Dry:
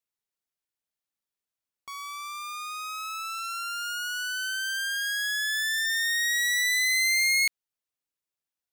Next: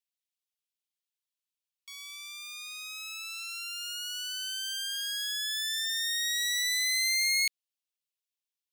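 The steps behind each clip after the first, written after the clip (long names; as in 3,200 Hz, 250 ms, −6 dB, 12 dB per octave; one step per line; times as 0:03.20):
four-pole ladder high-pass 2,200 Hz, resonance 30%
level +4 dB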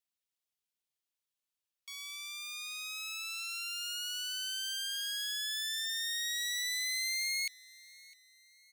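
downward compressor 3 to 1, threshold −34 dBFS, peak gain reduction 7.5 dB
repeating echo 656 ms, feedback 43%, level −22.5 dB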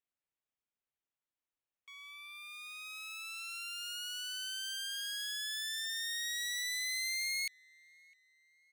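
adaptive Wiener filter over 9 samples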